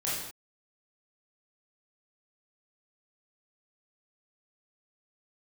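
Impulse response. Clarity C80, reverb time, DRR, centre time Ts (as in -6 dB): 3.5 dB, no single decay rate, -8.0 dB, 67 ms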